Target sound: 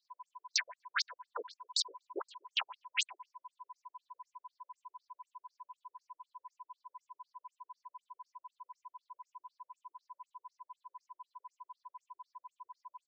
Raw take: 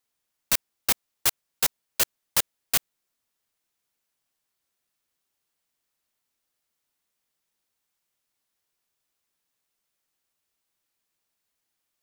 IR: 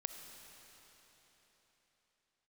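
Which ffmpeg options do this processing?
-filter_complex "[0:a]afftfilt=real='re*pow(10,15/40*sin(2*PI*(0.61*log(max(b,1)*sr/1024/100)/log(2)-(2.4)*(pts-256)/sr)))':imag='im*pow(10,15/40*sin(2*PI*(0.61*log(max(b,1)*sr/1024/100)/log(2)-(2.4)*(pts-256)/sr)))':win_size=1024:overlap=0.75,highpass=frequency=240:width=0.5412,highpass=frequency=240:width=1.3066,asplit=2[link_01][link_02];[link_02]acompressor=threshold=-34dB:ratio=5,volume=2dB[link_03];[link_01][link_03]amix=inputs=2:normalize=0,flanger=delay=16.5:depth=4.2:speed=1.3,asplit=2[link_04][link_05];[link_05]adelay=112,lowpass=frequency=1500:poles=1,volume=-17dB,asplit=2[link_06][link_07];[link_07]adelay=112,lowpass=frequency=1500:poles=1,volume=0.19[link_08];[link_06][link_08]amix=inputs=2:normalize=0[link_09];[link_04][link_09]amix=inputs=2:normalize=0,aeval=exprs='val(0)+0.00794*sin(2*PI*1000*n/s)':channel_layout=same,atempo=0.92,afftfilt=real='re*between(b*sr/1024,420*pow(6100/420,0.5+0.5*sin(2*PI*4*pts/sr))/1.41,420*pow(6100/420,0.5+0.5*sin(2*PI*4*pts/sr))*1.41)':imag='im*between(b*sr/1024,420*pow(6100/420,0.5+0.5*sin(2*PI*4*pts/sr))/1.41,420*pow(6100/420,0.5+0.5*sin(2*PI*4*pts/sr))*1.41)':win_size=1024:overlap=0.75"

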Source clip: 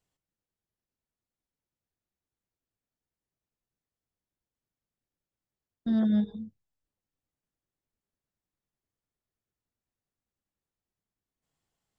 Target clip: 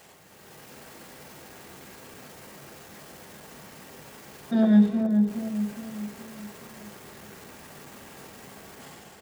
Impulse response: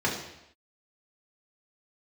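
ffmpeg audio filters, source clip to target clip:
-filter_complex "[0:a]aeval=exprs='val(0)+0.5*0.00631*sgn(val(0))':channel_layout=same,highpass=frequency=280:poles=1,highshelf=frequency=2100:gain=-5,bandreject=frequency=60:width_type=h:width=6,bandreject=frequency=120:width_type=h:width=6,bandreject=frequency=180:width_type=h:width=6,bandreject=frequency=240:width_type=h:width=6,bandreject=frequency=300:width_type=h:width=6,bandreject=frequency=360:width_type=h:width=6,bandreject=frequency=420:width_type=h:width=6,bandreject=frequency=480:width_type=h:width=6,dynaudnorm=framelen=170:gausssize=7:maxgain=8dB,atempo=1.3,asplit=2[link_01][link_02];[link_02]adelay=416,lowpass=frequency=860:poles=1,volume=-4.5dB,asplit=2[link_03][link_04];[link_04]adelay=416,lowpass=frequency=860:poles=1,volume=0.47,asplit=2[link_05][link_06];[link_06]adelay=416,lowpass=frequency=860:poles=1,volume=0.47,asplit=2[link_07][link_08];[link_08]adelay=416,lowpass=frequency=860:poles=1,volume=0.47,asplit=2[link_09][link_10];[link_10]adelay=416,lowpass=frequency=860:poles=1,volume=0.47,asplit=2[link_11][link_12];[link_12]adelay=416,lowpass=frequency=860:poles=1,volume=0.47[link_13];[link_01][link_03][link_05][link_07][link_09][link_11][link_13]amix=inputs=7:normalize=0,asplit=2[link_14][link_15];[1:a]atrim=start_sample=2205,atrim=end_sample=3969[link_16];[link_15][link_16]afir=irnorm=-1:irlink=0,volume=-12.5dB[link_17];[link_14][link_17]amix=inputs=2:normalize=0"

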